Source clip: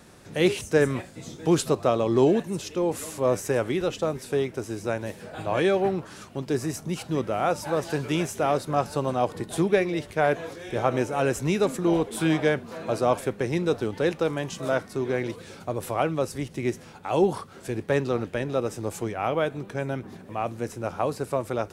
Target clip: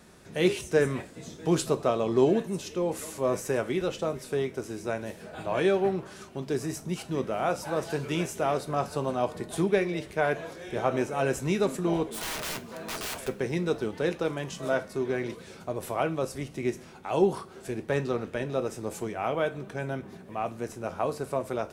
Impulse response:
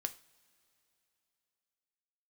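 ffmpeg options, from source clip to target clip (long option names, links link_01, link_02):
-filter_complex "[0:a]asplit=3[link_01][link_02][link_03];[link_01]afade=type=out:start_time=12.07:duration=0.02[link_04];[link_02]aeval=exprs='(mod(20*val(0)+1,2)-1)/20':channel_layout=same,afade=type=in:start_time=12.07:duration=0.02,afade=type=out:start_time=13.27:duration=0.02[link_05];[link_03]afade=type=in:start_time=13.27:duration=0.02[link_06];[link_04][link_05][link_06]amix=inputs=3:normalize=0[link_07];[1:a]atrim=start_sample=2205,asetrate=57330,aresample=44100[link_08];[link_07][link_08]afir=irnorm=-1:irlink=0"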